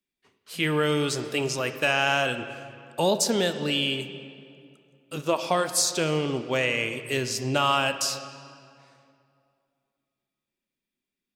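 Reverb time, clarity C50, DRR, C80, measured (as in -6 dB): 2.5 s, 10.5 dB, 9.5 dB, 11.0 dB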